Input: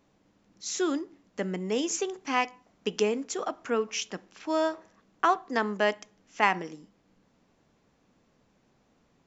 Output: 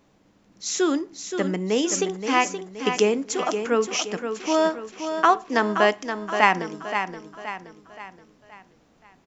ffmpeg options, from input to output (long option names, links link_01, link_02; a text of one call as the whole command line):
ffmpeg -i in.wav -af "aecho=1:1:524|1048|1572|2096|2620:0.398|0.175|0.0771|0.0339|0.0149,volume=6dB" out.wav